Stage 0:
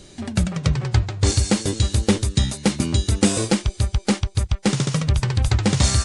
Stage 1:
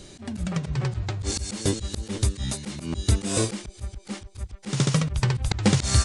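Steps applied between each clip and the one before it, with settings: slow attack 156 ms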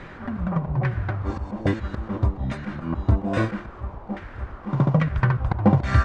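comb of notches 430 Hz; added noise pink -45 dBFS; LFO low-pass saw down 1.2 Hz 770–1900 Hz; trim +3 dB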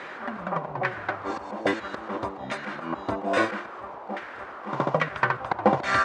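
high-pass 460 Hz 12 dB/octave; trim +5 dB

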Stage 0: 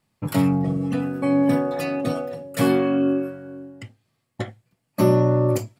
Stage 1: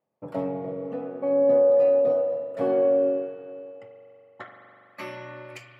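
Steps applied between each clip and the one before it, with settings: band-pass sweep 560 Hz -> 2.4 kHz, 3.47–5.14 s; spring tank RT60 3 s, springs 41 ms, chirp 35 ms, DRR 3.5 dB; trim +1 dB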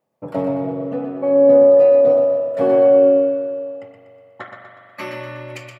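feedback delay 122 ms, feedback 49%, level -6.5 dB; trim +7 dB

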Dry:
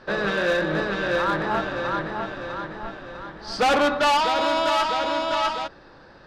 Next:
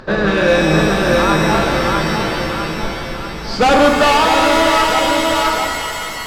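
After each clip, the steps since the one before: bass shelf 300 Hz +10 dB; upward compressor, threshold -42 dBFS; pitch-shifted reverb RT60 2.5 s, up +7 st, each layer -2 dB, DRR 6 dB; trim +5.5 dB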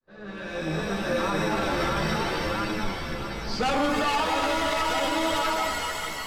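fade-in on the opening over 1.95 s; chorus voices 2, 0.74 Hz, delay 12 ms, depth 2.7 ms; peak limiter -11.5 dBFS, peak gain reduction 7 dB; trim -5 dB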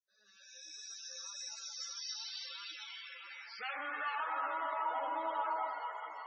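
four-pole ladder low-pass 7.4 kHz, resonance 65%; band-pass sweep 5.7 kHz -> 940 Hz, 1.87–4.91 s; loudest bins only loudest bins 64; trim +5 dB

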